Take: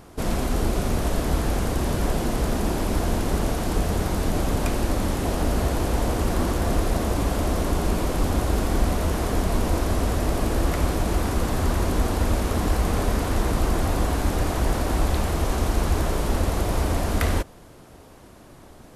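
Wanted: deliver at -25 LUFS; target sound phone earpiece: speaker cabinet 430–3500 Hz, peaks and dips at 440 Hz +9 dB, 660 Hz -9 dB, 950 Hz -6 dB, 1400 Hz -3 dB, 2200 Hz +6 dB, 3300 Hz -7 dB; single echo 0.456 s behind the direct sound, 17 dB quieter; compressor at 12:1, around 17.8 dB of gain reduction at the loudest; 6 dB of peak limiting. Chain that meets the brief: compressor 12:1, threshold -35 dBFS; limiter -31 dBFS; speaker cabinet 430–3500 Hz, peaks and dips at 440 Hz +9 dB, 660 Hz -9 dB, 950 Hz -6 dB, 1400 Hz -3 dB, 2200 Hz +6 dB, 3300 Hz -7 dB; echo 0.456 s -17 dB; gain +22.5 dB

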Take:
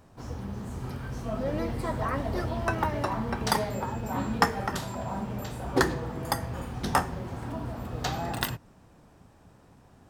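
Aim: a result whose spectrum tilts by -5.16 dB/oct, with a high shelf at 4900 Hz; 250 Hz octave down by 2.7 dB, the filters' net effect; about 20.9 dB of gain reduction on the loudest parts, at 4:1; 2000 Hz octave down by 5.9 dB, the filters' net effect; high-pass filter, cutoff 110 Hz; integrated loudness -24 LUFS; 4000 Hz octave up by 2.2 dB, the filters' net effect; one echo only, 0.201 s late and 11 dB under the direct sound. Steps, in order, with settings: HPF 110 Hz; bell 250 Hz -3 dB; bell 2000 Hz -8.5 dB; bell 4000 Hz +8.5 dB; high shelf 4900 Hz -7 dB; compressor 4:1, threshold -48 dBFS; echo 0.201 s -11 dB; gain +24.5 dB

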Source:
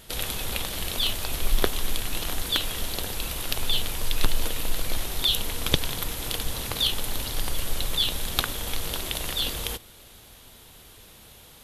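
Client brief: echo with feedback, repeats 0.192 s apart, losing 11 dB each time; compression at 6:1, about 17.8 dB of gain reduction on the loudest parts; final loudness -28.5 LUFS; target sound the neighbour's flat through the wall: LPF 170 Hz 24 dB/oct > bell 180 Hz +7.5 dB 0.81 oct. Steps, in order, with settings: compressor 6:1, threshold -34 dBFS; LPF 170 Hz 24 dB/oct; bell 180 Hz +7.5 dB 0.81 oct; feedback echo 0.192 s, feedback 28%, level -11 dB; gain +20 dB

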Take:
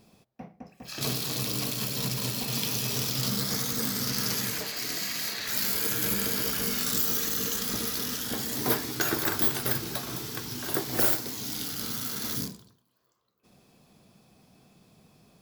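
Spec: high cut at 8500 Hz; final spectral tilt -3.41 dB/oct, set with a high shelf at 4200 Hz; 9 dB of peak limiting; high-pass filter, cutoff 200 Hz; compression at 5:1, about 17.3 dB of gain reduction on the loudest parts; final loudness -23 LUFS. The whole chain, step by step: HPF 200 Hz; LPF 8500 Hz; high shelf 4200 Hz -5 dB; compressor 5:1, threshold -46 dBFS; gain +25 dB; limiter -13.5 dBFS

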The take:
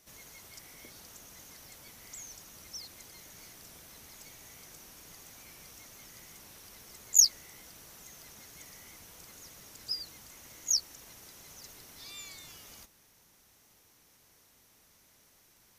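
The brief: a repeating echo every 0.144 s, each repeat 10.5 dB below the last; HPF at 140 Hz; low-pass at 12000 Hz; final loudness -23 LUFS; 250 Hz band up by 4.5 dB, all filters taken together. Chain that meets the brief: HPF 140 Hz; LPF 12000 Hz; bell 250 Hz +6.5 dB; feedback echo 0.144 s, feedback 30%, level -10.5 dB; gain +7 dB

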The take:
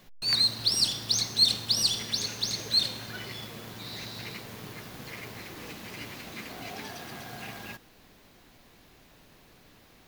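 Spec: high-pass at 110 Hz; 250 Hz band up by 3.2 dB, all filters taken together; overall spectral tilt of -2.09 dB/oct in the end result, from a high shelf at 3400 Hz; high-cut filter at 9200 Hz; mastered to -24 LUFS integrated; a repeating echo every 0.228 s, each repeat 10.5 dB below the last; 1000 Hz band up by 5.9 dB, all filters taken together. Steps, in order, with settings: HPF 110 Hz; LPF 9200 Hz; bell 250 Hz +4 dB; bell 1000 Hz +8 dB; high shelf 3400 Hz -6 dB; feedback echo 0.228 s, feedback 30%, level -10.5 dB; gain +7.5 dB

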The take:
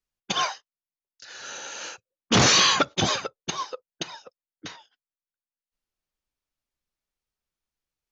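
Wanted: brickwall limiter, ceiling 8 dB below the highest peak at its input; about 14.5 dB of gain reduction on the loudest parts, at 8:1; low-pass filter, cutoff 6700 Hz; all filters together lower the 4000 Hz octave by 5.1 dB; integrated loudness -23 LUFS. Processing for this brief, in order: LPF 6700 Hz; bell 4000 Hz -6 dB; compressor 8:1, threshold -31 dBFS; gain +16 dB; limiter -11 dBFS

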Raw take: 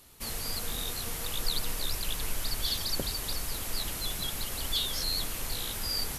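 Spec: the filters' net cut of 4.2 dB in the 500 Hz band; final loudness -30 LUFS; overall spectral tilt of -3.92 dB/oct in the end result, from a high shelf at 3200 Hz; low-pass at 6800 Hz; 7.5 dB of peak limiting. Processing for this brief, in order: LPF 6800 Hz; bell 500 Hz -5 dB; high shelf 3200 Hz -6 dB; gain +8.5 dB; limiter -18 dBFS

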